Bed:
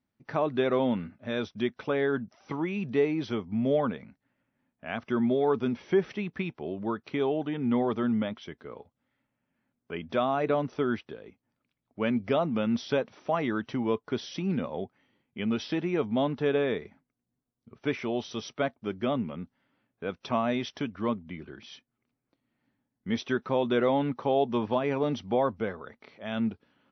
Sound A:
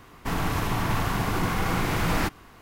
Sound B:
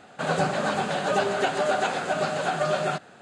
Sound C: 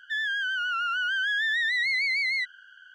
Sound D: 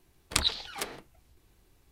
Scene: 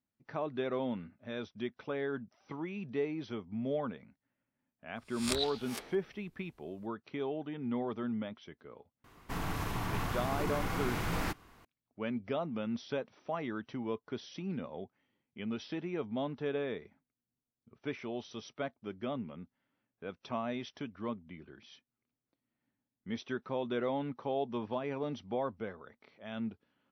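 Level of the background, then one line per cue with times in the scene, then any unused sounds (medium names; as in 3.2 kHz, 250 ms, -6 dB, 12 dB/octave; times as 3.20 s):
bed -9 dB
4.96 s: add D -10.5 dB + reverse spectral sustain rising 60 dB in 0.41 s
9.04 s: add A -9.5 dB
not used: B, C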